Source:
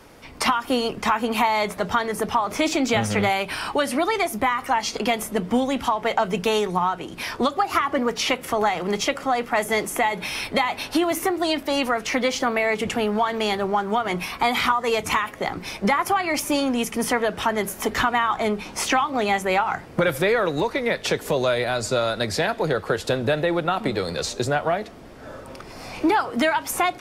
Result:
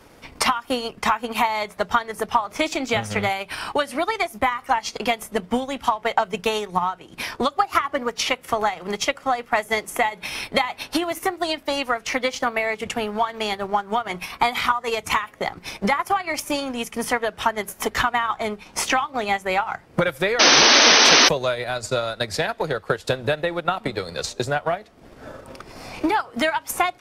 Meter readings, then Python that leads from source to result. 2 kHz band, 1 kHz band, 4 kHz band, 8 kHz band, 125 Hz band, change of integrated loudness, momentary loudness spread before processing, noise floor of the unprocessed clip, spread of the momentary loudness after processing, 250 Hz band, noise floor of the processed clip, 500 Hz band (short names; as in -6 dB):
+2.0 dB, +0.5 dB, +6.5 dB, +6.0 dB, -2.5 dB, +1.0 dB, 5 LU, -41 dBFS, 7 LU, -4.0 dB, -50 dBFS, -1.5 dB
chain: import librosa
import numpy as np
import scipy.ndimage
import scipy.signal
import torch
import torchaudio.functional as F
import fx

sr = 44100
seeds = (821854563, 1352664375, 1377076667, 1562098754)

y = fx.dynamic_eq(x, sr, hz=280.0, q=0.84, threshold_db=-37.0, ratio=4.0, max_db=-5)
y = fx.transient(y, sr, attack_db=6, sustain_db=-8)
y = fx.spec_paint(y, sr, seeds[0], shape='noise', start_s=20.39, length_s=0.9, low_hz=220.0, high_hz=6300.0, level_db=-12.0)
y = y * 10.0 ** (-1.5 / 20.0)